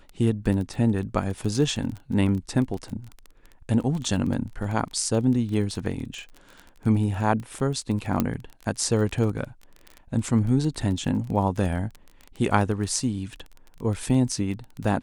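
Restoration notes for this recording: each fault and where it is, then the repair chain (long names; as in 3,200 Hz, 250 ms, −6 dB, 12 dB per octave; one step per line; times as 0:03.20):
surface crackle 22 per second −30 dBFS
0:08.20: click −9 dBFS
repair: click removal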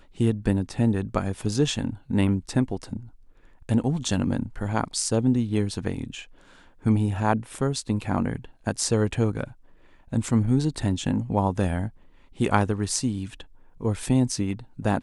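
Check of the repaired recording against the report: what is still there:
none of them is left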